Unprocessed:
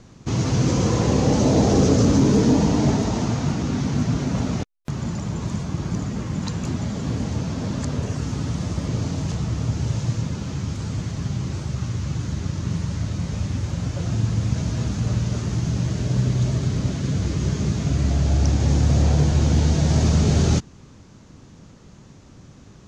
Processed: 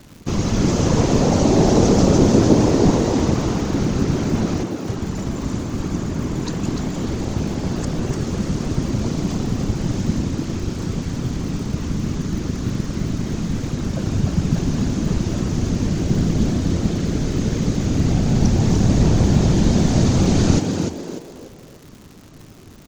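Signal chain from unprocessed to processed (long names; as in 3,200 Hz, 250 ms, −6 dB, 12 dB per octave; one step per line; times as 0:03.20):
random phases in short frames
echo with shifted repeats 296 ms, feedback 35%, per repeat +80 Hz, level −5.5 dB
surface crackle 230 per second −36 dBFS
level +1.5 dB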